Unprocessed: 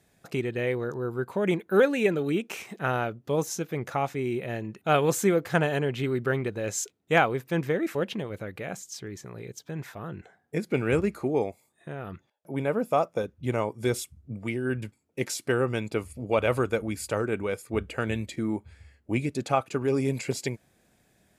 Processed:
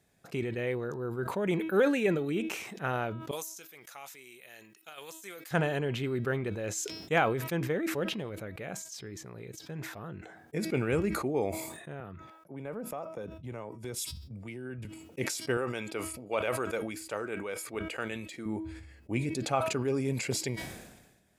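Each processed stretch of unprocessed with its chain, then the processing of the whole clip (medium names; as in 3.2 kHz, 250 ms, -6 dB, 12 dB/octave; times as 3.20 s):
3.31–5.51 s: differentiator + compressor with a negative ratio -41 dBFS, ratio -0.5
12.00–14.85 s: compression 5:1, threshold -31 dBFS + three bands expanded up and down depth 70%
15.57–18.46 s: high-pass 510 Hz 6 dB/octave + de-esser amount 85%
whole clip: de-hum 321.5 Hz, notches 17; decay stretcher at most 50 dB/s; trim -5 dB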